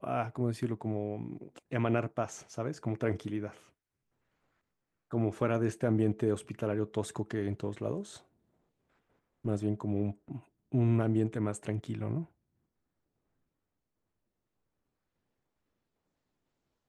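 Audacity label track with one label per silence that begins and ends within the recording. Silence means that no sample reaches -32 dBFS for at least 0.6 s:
3.460000	5.130000	silence
8.010000	9.460000	silence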